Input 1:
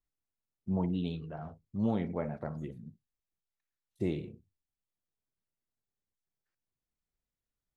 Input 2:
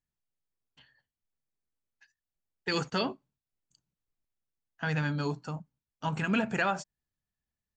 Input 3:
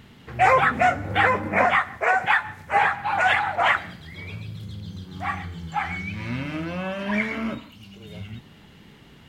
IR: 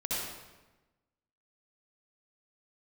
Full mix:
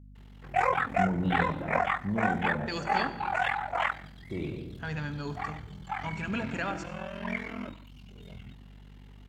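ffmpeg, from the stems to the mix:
-filter_complex "[0:a]alimiter=level_in=1.26:limit=0.0631:level=0:latency=1,volume=0.794,adelay=300,volume=1.19,asplit=2[s0][s1];[s1]volume=0.299[s2];[1:a]volume=0.501,asplit=3[s3][s4][s5];[s4]volume=0.158[s6];[2:a]equalizer=f=860:w=1.5:g=3,aeval=exprs='val(0)*sin(2*PI*21*n/s)':c=same,adelay=150,volume=0.422[s7];[s5]apad=whole_len=355473[s8];[s0][s8]sidechaincompress=threshold=0.00316:ratio=8:attack=16:release=1280[s9];[3:a]atrim=start_sample=2205[s10];[s2][s6]amix=inputs=2:normalize=0[s11];[s11][s10]afir=irnorm=-1:irlink=0[s12];[s9][s3][s7][s12]amix=inputs=4:normalize=0,aeval=exprs='val(0)+0.00355*(sin(2*PI*50*n/s)+sin(2*PI*2*50*n/s)/2+sin(2*PI*3*50*n/s)/3+sin(2*PI*4*50*n/s)/4+sin(2*PI*5*50*n/s)/5)':c=same"

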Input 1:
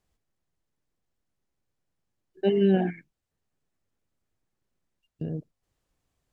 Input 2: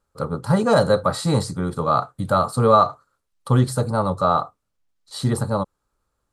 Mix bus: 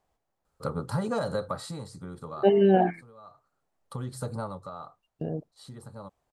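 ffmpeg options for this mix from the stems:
-filter_complex "[0:a]equalizer=f=770:t=o:w=1.6:g=14,volume=0.708,asplit=2[s0][s1];[1:a]alimiter=limit=0.316:level=0:latency=1:release=229,acompressor=threshold=0.0501:ratio=3,adelay=450,volume=1.88,afade=t=out:st=1.43:d=0.31:silence=0.334965,afade=t=in:st=3.15:d=0.35:silence=0.421697,afade=t=out:st=4.36:d=0.23:silence=0.354813[s2];[s1]apad=whole_len=298572[s3];[s2][s3]sidechaincompress=threshold=0.0224:ratio=8:attack=10:release=1270[s4];[s0][s4]amix=inputs=2:normalize=0"

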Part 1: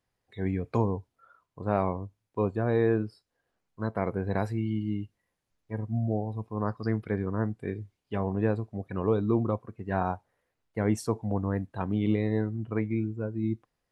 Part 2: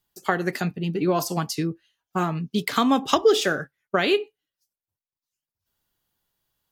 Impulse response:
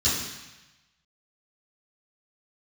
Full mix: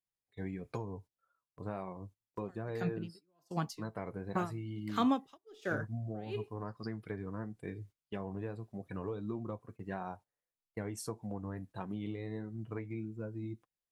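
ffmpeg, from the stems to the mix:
-filter_complex "[0:a]acompressor=threshold=0.0355:ratio=6,flanger=delay=5.2:depth=2:regen=-49:speed=1.6:shape=triangular,volume=0.75[s0];[1:a]lowpass=f=1400:p=1,aeval=exprs='val(0)*pow(10,-34*(0.5-0.5*cos(2*PI*1.4*n/s))/20)':c=same,adelay=2200,volume=0.447[s1];[s0][s1]amix=inputs=2:normalize=0,agate=range=0.178:threshold=0.00224:ratio=16:detection=peak,highshelf=f=4400:g=11"

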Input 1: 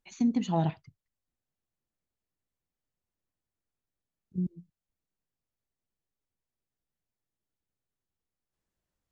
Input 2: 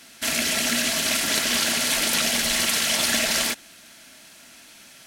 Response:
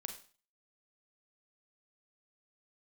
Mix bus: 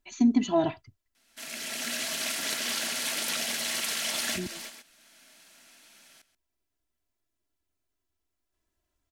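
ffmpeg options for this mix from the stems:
-filter_complex "[0:a]aecho=1:1:3:0.91,volume=1.41,asplit=2[s0][s1];[1:a]highpass=f=260:p=1,adelay=1150,volume=0.376,asplit=2[s2][s3];[s3]volume=0.168[s4];[s1]apad=whole_len=274132[s5];[s2][s5]sidechaincompress=threshold=0.00562:ratio=4:attack=29:release=821[s6];[s4]aecho=0:1:132:1[s7];[s0][s6][s7]amix=inputs=3:normalize=0"

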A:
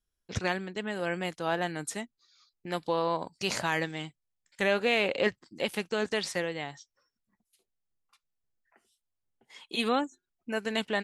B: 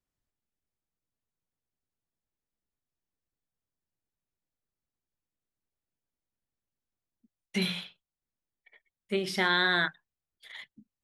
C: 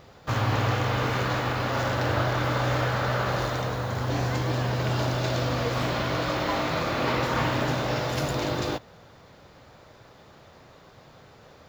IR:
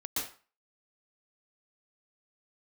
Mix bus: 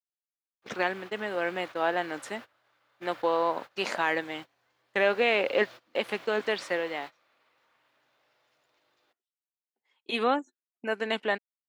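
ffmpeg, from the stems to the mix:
-filter_complex "[0:a]lowshelf=f=140:t=q:w=1.5:g=-13.5,adelay=350,volume=1.41[s0];[2:a]alimiter=limit=0.0944:level=0:latency=1:release=27,tiltshelf=f=1500:g=-8,acrusher=bits=5:mix=0:aa=0.000001,adelay=350,volume=0.178[s1];[s0][s1]amix=inputs=2:normalize=0,agate=range=0.0794:threshold=0.0158:ratio=16:detection=peak,bass=f=250:g=-15,treble=f=4000:g=-13"

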